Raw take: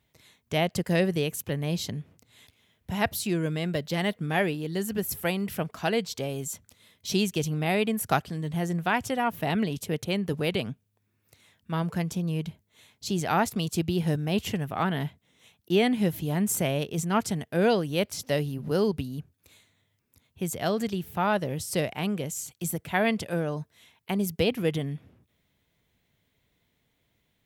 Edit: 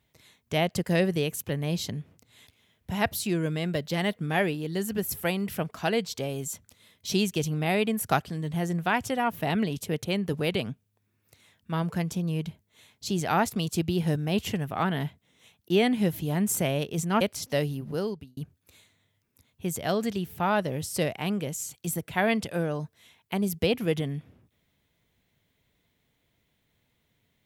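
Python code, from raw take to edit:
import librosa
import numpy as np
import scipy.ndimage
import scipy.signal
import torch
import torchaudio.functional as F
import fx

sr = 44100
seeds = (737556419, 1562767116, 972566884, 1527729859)

y = fx.edit(x, sr, fx.cut(start_s=17.21, length_s=0.77),
    fx.fade_out_span(start_s=18.5, length_s=0.64), tone=tone)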